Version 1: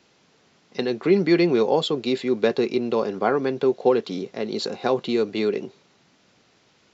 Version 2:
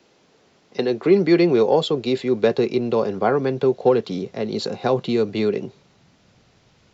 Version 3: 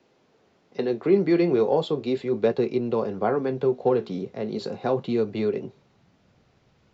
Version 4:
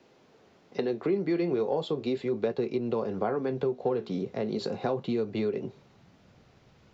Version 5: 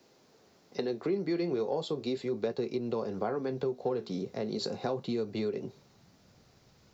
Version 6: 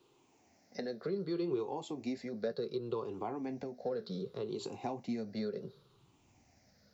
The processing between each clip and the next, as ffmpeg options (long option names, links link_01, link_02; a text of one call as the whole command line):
ffmpeg -i in.wav -filter_complex "[0:a]asubboost=boost=7.5:cutoff=120,acrossover=split=280|710[link_01][link_02][link_03];[link_02]acontrast=75[link_04];[link_01][link_04][link_03]amix=inputs=3:normalize=0" out.wav
ffmpeg -i in.wav -af "highshelf=frequency=3000:gain=-9,flanger=delay=7.6:depth=8:regen=-63:speed=0.36:shape=sinusoidal" out.wav
ffmpeg -i in.wav -af "acompressor=threshold=-31dB:ratio=3,volume=3dB" out.wav
ffmpeg -i in.wav -af "aexciter=amount=3.1:drive=4.6:freq=4200,volume=-3.5dB" out.wav
ffmpeg -i in.wav -af "afftfilt=real='re*pow(10,13/40*sin(2*PI*(0.65*log(max(b,1)*sr/1024/100)/log(2)-(-0.67)*(pts-256)/sr)))':imag='im*pow(10,13/40*sin(2*PI*(0.65*log(max(b,1)*sr/1024/100)/log(2)-(-0.67)*(pts-256)/sr)))':win_size=1024:overlap=0.75,volume=-7dB" out.wav